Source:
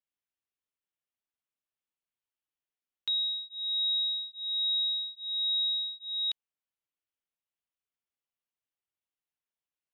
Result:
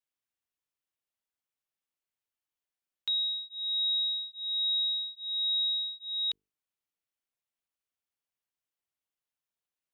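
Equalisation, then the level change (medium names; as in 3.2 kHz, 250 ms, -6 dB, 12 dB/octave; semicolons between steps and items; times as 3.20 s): hum notches 50/100/150/200/250/300/350/400/450 Hz; 0.0 dB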